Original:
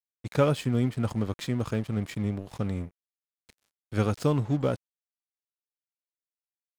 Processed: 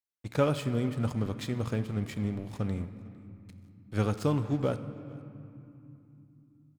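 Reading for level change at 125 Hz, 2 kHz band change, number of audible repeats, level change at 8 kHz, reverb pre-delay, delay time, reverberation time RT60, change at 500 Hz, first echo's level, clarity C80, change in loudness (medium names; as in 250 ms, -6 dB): -2.5 dB, -2.5 dB, 1, -3.0 dB, 10 ms, 454 ms, 2.9 s, -3.0 dB, -24.0 dB, 12.0 dB, -3.0 dB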